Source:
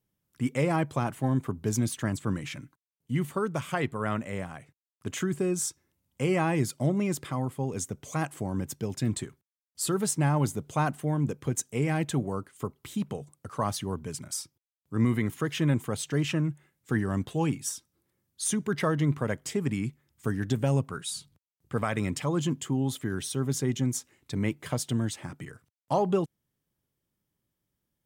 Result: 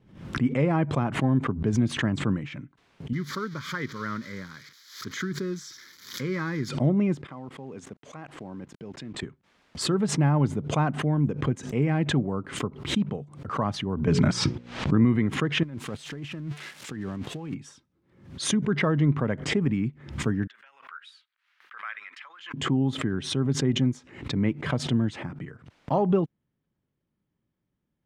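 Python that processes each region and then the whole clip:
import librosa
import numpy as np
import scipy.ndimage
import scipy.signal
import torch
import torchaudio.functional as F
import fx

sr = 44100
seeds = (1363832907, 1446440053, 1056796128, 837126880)

y = fx.chain(x, sr, fx.crossing_spikes(level_db=-26.0),
    fx.tilt_eq(slope=2.5),
    fx.fixed_phaser(hz=2700.0, stages=6), at=(3.13, 6.69))
y = fx.chain(y, sr, fx.highpass(hz=330.0, slope=6),
    fx.level_steps(step_db=21),
    fx.quant_companded(bits=6), at=(7.27, 9.23))
y = fx.chain(y, sr, fx.lowpass(hz=7000.0, slope=12),
    fx.hum_notches(base_hz=60, count=9),
    fx.env_flatten(amount_pct=100), at=(14.07, 15.02))
y = fx.chain(y, sr, fx.crossing_spikes(level_db=-25.0),
    fx.low_shelf(hz=110.0, db=-4.5),
    fx.over_compress(threshold_db=-36.0, ratio=-1.0), at=(15.63, 17.54))
y = fx.chain(y, sr, fx.peak_eq(hz=7800.0, db=-14.0, octaves=1.5),
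    fx.over_compress(threshold_db=-27.0, ratio=-0.5),
    fx.cheby1_highpass(hz=1500.0, order=3), at=(20.47, 22.54))
y = scipy.signal.sosfilt(scipy.signal.butter(2, 2700.0, 'lowpass', fs=sr, output='sos'), y)
y = fx.peak_eq(y, sr, hz=210.0, db=5.0, octaves=1.6)
y = fx.pre_swell(y, sr, db_per_s=99.0)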